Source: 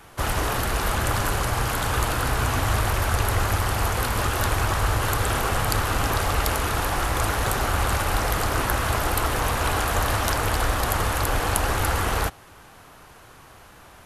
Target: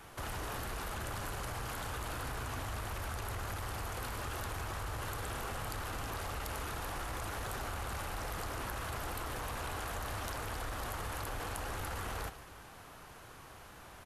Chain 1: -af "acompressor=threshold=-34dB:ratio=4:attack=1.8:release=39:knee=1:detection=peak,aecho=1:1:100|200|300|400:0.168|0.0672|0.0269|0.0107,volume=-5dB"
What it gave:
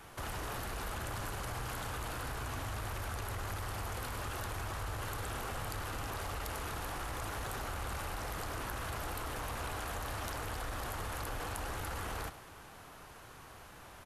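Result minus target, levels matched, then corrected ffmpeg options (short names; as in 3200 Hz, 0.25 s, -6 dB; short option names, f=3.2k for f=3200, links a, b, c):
echo 45 ms early
-af "acompressor=threshold=-34dB:ratio=4:attack=1.8:release=39:knee=1:detection=peak,aecho=1:1:145|290|435|580:0.168|0.0672|0.0269|0.0107,volume=-5dB"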